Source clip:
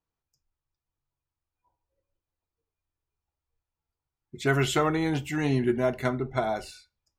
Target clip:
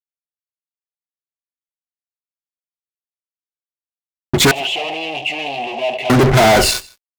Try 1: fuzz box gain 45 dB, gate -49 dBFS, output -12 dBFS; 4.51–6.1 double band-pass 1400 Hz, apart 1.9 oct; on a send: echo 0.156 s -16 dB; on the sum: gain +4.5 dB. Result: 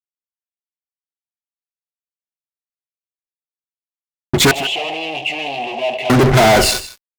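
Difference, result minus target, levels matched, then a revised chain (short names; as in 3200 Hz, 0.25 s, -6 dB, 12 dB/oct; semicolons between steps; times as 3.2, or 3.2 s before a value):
echo-to-direct +9 dB
fuzz box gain 45 dB, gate -49 dBFS, output -12 dBFS; 4.51–6.1 double band-pass 1400 Hz, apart 1.9 oct; on a send: echo 0.156 s -25 dB; on the sum: gain +4.5 dB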